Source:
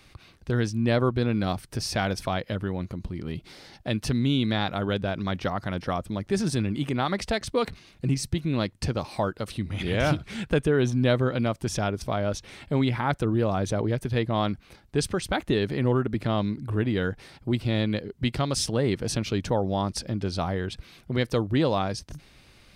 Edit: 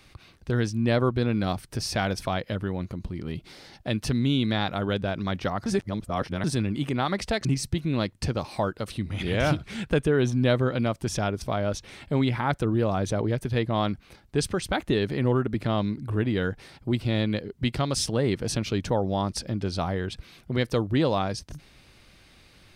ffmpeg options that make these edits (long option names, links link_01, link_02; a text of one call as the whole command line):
ffmpeg -i in.wav -filter_complex "[0:a]asplit=4[link_01][link_02][link_03][link_04];[link_01]atrim=end=5.662[link_05];[link_02]atrim=start=5.658:end=6.442,asetpts=PTS-STARTPTS,areverse[link_06];[link_03]atrim=start=6.438:end=7.452[link_07];[link_04]atrim=start=8.048[link_08];[link_05][link_06]acrossfade=duration=0.004:curve1=hsin:curve2=hsin[link_09];[link_09][link_07]acrossfade=duration=0.004:curve1=hsin:curve2=hsin[link_10];[link_10][link_08]acrossfade=duration=0.004:curve1=hsin:curve2=hsin" out.wav